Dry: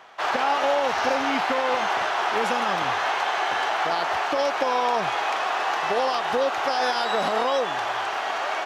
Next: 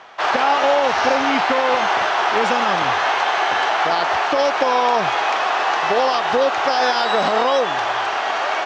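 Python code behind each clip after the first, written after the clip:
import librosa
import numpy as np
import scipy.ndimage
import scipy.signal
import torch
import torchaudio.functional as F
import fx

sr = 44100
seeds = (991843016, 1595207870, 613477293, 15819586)

y = scipy.signal.sosfilt(scipy.signal.butter(4, 7000.0, 'lowpass', fs=sr, output='sos'), x)
y = F.gain(torch.from_numpy(y), 6.0).numpy()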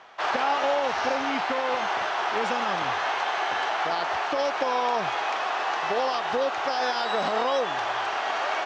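y = fx.rider(x, sr, range_db=10, speed_s=2.0)
y = F.gain(torch.from_numpy(y), -8.5).numpy()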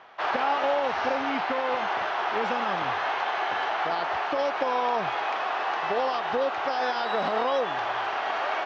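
y = fx.air_absorb(x, sr, metres=150.0)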